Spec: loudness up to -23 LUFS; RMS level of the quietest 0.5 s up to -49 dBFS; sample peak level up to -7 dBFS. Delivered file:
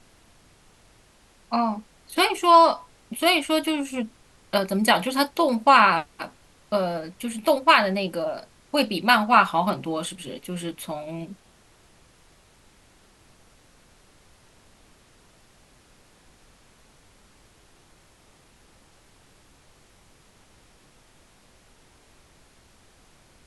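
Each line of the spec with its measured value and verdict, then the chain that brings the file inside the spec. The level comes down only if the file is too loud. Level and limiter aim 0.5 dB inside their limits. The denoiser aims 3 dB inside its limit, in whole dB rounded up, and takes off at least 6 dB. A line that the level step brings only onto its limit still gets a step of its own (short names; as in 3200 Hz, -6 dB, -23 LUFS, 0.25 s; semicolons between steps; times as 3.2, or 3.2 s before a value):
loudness -22.0 LUFS: fail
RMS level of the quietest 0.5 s -57 dBFS: OK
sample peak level -3.5 dBFS: fail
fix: gain -1.5 dB; limiter -7.5 dBFS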